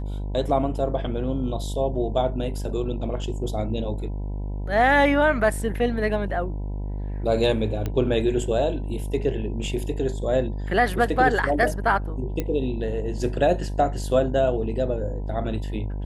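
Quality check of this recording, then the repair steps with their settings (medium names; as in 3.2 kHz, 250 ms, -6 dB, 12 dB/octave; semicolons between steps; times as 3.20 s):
buzz 50 Hz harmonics 20 -29 dBFS
7.86 s: pop -15 dBFS
12.40 s: pop -13 dBFS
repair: de-click; de-hum 50 Hz, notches 20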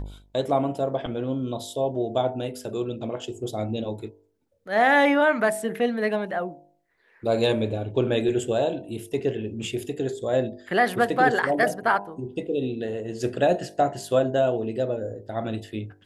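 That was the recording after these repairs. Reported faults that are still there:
7.86 s: pop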